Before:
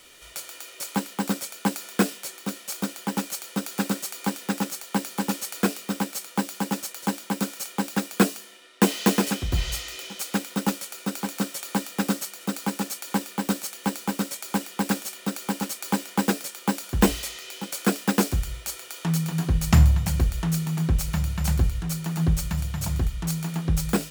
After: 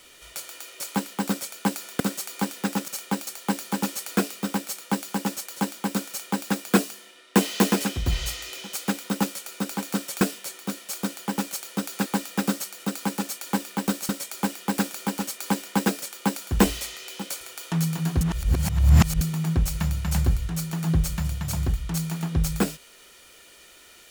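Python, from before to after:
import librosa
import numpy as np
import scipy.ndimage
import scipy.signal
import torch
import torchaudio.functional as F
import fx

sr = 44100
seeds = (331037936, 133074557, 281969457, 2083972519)

y = fx.edit(x, sr, fx.move(start_s=2.0, length_s=1.85, to_s=11.67),
    fx.duplicate(start_s=7.55, length_s=0.39, to_s=4.73),
    fx.cut(start_s=13.7, length_s=0.5),
    fx.cut(start_s=15.05, length_s=0.31),
    fx.cut(start_s=17.83, length_s=0.91),
    fx.reverse_span(start_s=19.54, length_s=1.0), tone=tone)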